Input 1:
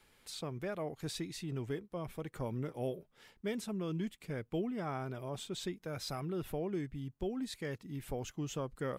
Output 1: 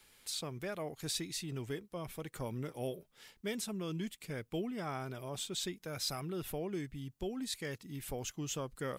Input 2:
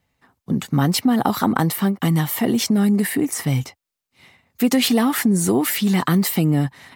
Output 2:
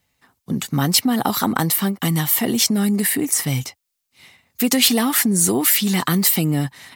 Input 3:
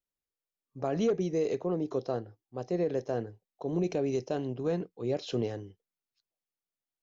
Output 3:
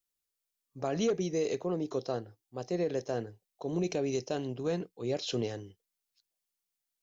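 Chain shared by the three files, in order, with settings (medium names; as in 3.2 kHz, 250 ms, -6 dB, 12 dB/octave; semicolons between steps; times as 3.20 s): treble shelf 2.6 kHz +10.5 dB; trim -2 dB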